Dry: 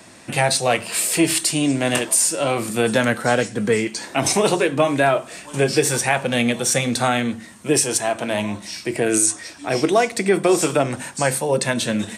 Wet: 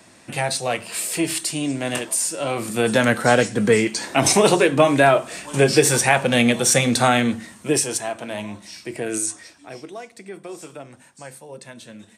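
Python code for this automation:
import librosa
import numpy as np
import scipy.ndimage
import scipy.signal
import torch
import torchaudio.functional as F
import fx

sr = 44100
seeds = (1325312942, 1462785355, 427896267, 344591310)

y = fx.gain(x, sr, db=fx.line((2.34, -5.0), (3.21, 2.5), (7.34, 2.5), (8.21, -7.0), (9.42, -7.0), (9.85, -19.0)))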